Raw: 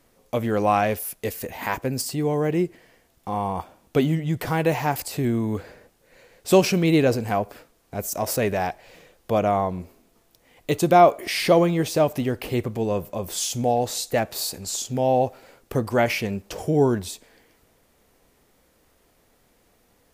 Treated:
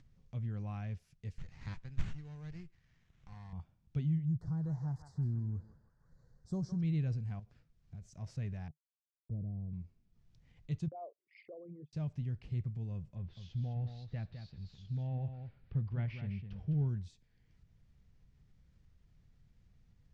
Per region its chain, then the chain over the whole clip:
1.38–3.53 s: frequency weighting ITU-R 468 + sliding maximum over 9 samples
4.25–6.81 s: Butterworth band-stop 2.6 kHz, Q 0.67 + band-passed feedback delay 161 ms, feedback 61%, band-pass 1.6 kHz, level -5 dB
7.39–8.02 s: block-companded coder 5-bit + compression 12:1, threshold -30 dBFS
8.68–9.73 s: small samples zeroed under -35 dBFS + inverse Chebyshev low-pass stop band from 2.8 kHz, stop band 80 dB
10.88–11.93 s: resonances exaggerated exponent 3 + gate -25 dBFS, range -29 dB + band-pass 310–3000 Hz
13.16–16.88 s: companding laws mixed up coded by mu + low-pass 3.9 kHz 24 dB/octave + delay 207 ms -8 dB
whole clip: FFT filter 150 Hz 0 dB, 280 Hz -21 dB, 550 Hz -28 dB, 1.1 kHz -25 dB, 1.7 kHz -21 dB; upward compressor, threshold -47 dBFS; low-pass 6.4 kHz 24 dB/octave; trim -6 dB

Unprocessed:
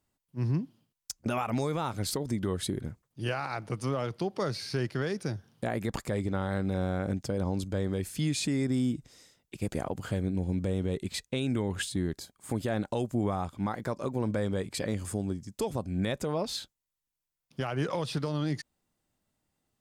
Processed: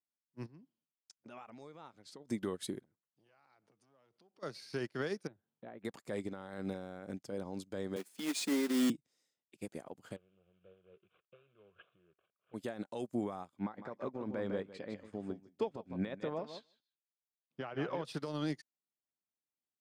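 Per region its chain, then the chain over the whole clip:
0.46–2.27 s: low-pass 5.8 kHz + compression 3:1, threshold -36 dBFS
2.84–4.43 s: low-pass 8.4 kHz + compression 5:1, threshold -41 dBFS + transformer saturation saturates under 440 Hz
5.27–5.85 s: treble shelf 2.2 kHz -9.5 dB + compression 2.5:1, threshold -34 dBFS + brick-wall FIR low-pass 4.2 kHz
7.96–8.90 s: elliptic high-pass 200 Hz + companded quantiser 4-bit
10.16–12.54 s: CVSD coder 16 kbps + compression, threshold -33 dBFS + static phaser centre 1.3 kHz, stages 8
13.59–18.05 s: low-pass 2.9 kHz + feedback delay 154 ms, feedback 15%, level -8.5 dB
whole clip: high-pass 210 Hz 12 dB/octave; peak limiter -24.5 dBFS; upward expansion 2.5:1, over -46 dBFS; trim +2 dB

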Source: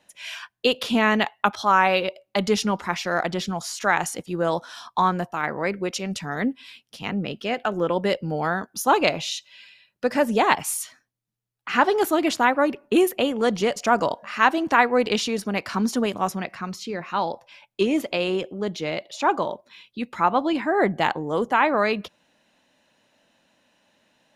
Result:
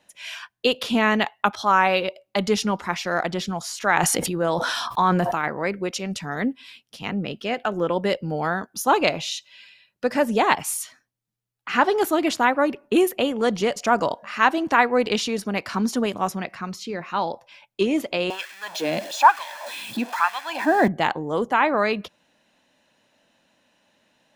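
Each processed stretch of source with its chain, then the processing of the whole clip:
3.76–5.48 s: peaking EQ 6.7 kHz -3.5 dB 0.75 oct + decay stretcher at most 21 dB/s
18.30–20.88 s: jump at every zero crossing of -32 dBFS + comb 1.2 ms, depth 51% + LFO high-pass sine 1.1 Hz 210–2000 Hz
whole clip: none

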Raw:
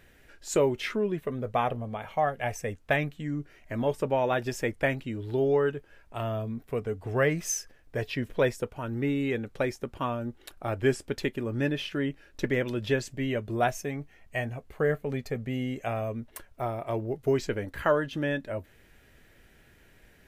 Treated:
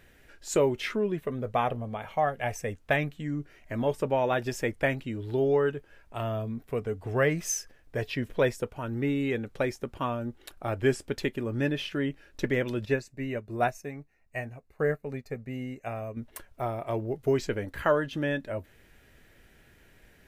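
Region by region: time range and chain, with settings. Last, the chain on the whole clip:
12.85–16.17 s: Butterworth band-stop 3.2 kHz, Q 4.8 + upward expansion, over -47 dBFS
whole clip: none

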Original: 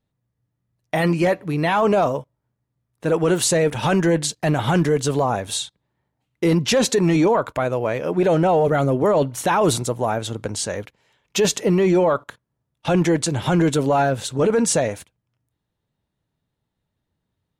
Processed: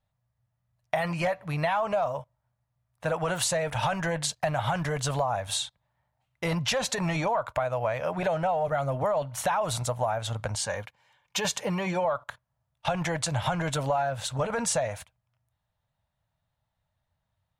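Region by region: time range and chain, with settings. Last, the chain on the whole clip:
10.55–12.05 s: bass shelf 66 Hz -9.5 dB + comb of notches 660 Hz
whole clip: FFT filter 110 Hz 0 dB, 380 Hz -20 dB, 620 Hz +3 dB, 6.6 kHz -4 dB; compression, threshold -24 dBFS

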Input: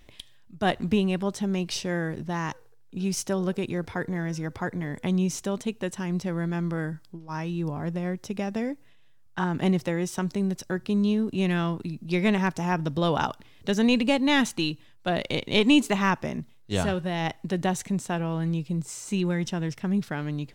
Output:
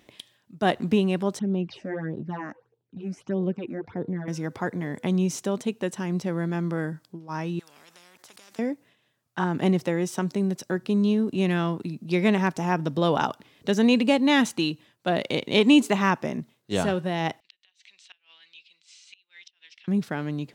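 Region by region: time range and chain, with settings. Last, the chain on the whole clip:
1.39–4.28 s: tape spacing loss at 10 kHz 27 dB + phase shifter stages 8, 1.6 Hz, lowest notch 120–1900 Hz
7.59–8.59 s: level held to a coarse grid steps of 20 dB + spectrum-flattening compressor 10:1
17.40–19.88 s: Butterworth band-pass 3.3 kHz, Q 1.6 + inverted gate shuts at -33 dBFS, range -25 dB
whole clip: high-pass 140 Hz 12 dB/octave; peaking EQ 380 Hz +3 dB 2.7 oct

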